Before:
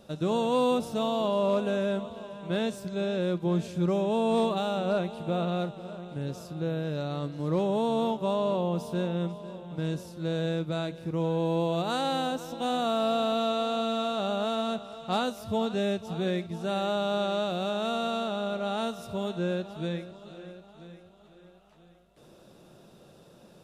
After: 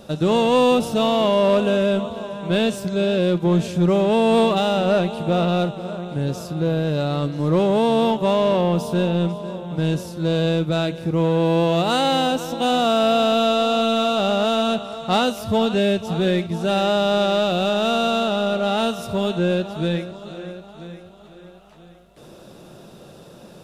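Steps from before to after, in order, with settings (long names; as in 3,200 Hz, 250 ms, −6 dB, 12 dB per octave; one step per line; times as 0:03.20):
dynamic equaliser 2,900 Hz, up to +6 dB, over −54 dBFS, Q 4.5
in parallel at −5 dB: hard clipping −30 dBFS, distortion −7 dB
on the sum: level +7 dB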